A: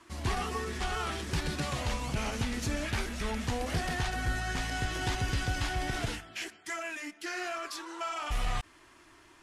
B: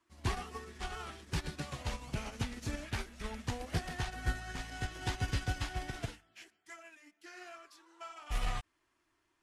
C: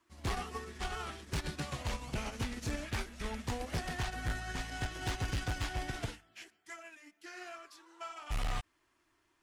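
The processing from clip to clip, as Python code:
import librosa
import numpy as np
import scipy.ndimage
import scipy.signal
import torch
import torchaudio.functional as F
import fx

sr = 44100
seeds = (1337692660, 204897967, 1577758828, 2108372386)

y1 = fx.upward_expand(x, sr, threshold_db=-40.0, expansion=2.5)
y2 = np.clip(10.0 ** (33.5 / 20.0) * y1, -1.0, 1.0) / 10.0 ** (33.5 / 20.0)
y2 = y2 * 10.0 ** (3.0 / 20.0)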